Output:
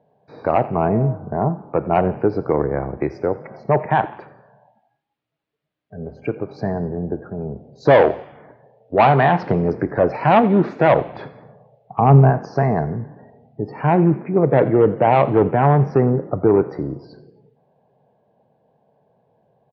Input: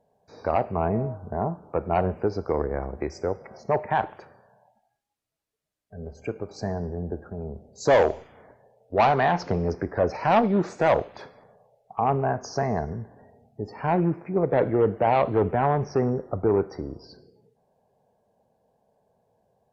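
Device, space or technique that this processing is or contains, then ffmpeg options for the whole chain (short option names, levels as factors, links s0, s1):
frequency-shifting delay pedal into a guitar cabinet: -filter_complex "[0:a]asettb=1/sr,asplit=3[s0][s1][s2];[s0]atrim=end=11.044[s3];[s1]atrim=start=11.04:end=12.3,asetpts=PTS-STARTPTS,afade=t=in:d=0.004:c=qsin,afade=t=out:st=1.256:d=0.004:c=qsin,lowshelf=f=230:g=9.5[s4];[s2]atrim=start=12.296[s5];[s3][s4]acrossfade=d=0.004:c1=hsin:c2=qsin[s6];[s6][s5]acrossfade=d=0.004:c1=qsin:c2=hsin,asplit=4[s7][s8][s9][s10];[s8]adelay=86,afreqshift=34,volume=0.1[s11];[s9]adelay=172,afreqshift=68,volume=0.0442[s12];[s10]adelay=258,afreqshift=102,volume=0.0193[s13];[s7][s11][s12][s13]amix=inputs=4:normalize=0,highpass=77,equalizer=f=83:t=q:w=4:g=-6,equalizer=f=140:t=q:w=4:g=8,equalizer=f=310:t=q:w=4:g=4,lowpass=f=3600:w=0.5412,lowpass=f=3600:w=1.3066,volume=2"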